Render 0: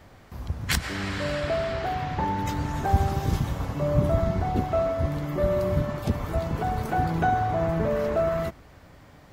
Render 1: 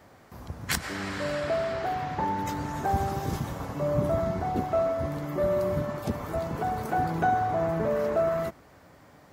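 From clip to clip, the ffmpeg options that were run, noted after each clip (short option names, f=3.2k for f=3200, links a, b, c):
-af "highpass=f=210:p=1,equalizer=f=3.1k:w=1:g=-5"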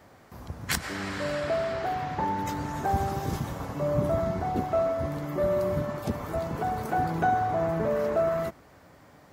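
-af anull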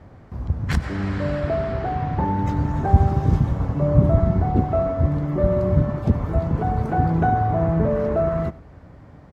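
-af "aemphasis=mode=reproduction:type=riaa,aecho=1:1:93:0.0841,volume=2dB"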